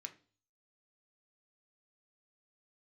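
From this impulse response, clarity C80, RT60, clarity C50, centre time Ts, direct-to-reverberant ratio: 21.0 dB, 0.40 s, 15.5 dB, 6 ms, 5.5 dB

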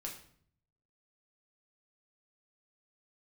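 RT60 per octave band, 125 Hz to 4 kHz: 1.1 s, 0.80 s, 0.60 s, 0.55 s, 0.50 s, 0.45 s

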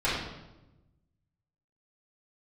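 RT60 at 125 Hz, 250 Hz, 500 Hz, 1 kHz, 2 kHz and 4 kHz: 1.7 s, 1.4 s, 1.1 s, 0.90 s, 0.80 s, 0.75 s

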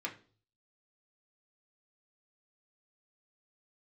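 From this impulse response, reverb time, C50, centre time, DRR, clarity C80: 0.40 s, 13.0 dB, 13 ms, -1.5 dB, 18.0 dB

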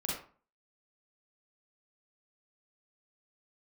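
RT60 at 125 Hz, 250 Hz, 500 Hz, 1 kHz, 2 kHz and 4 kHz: 0.45 s, 0.45 s, 0.40 s, 0.45 s, 0.35 s, 0.25 s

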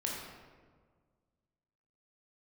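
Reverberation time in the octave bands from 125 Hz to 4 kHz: 2.2 s, 1.9 s, 1.8 s, 1.5 s, 1.2 s, 0.85 s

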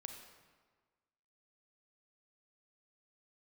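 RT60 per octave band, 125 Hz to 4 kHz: 1.5 s, 1.5 s, 1.5 s, 1.5 s, 1.3 s, 1.0 s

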